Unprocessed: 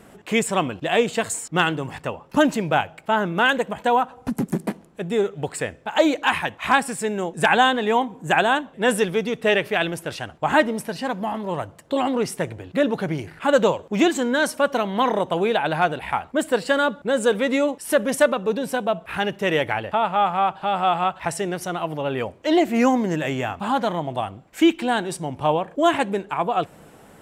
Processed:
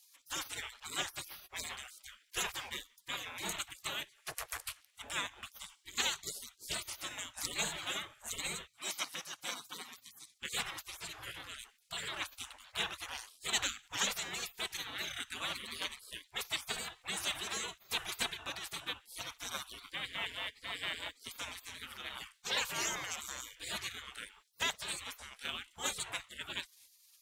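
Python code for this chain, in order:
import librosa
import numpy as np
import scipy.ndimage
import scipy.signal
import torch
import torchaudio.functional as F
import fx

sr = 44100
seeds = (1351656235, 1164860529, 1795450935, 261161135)

y = fx.highpass(x, sr, hz=370.0, slope=12, at=(8.67, 10.36))
y = fx.spec_gate(y, sr, threshold_db=-30, keep='weak')
y = y * 10.0 ** (3.5 / 20.0)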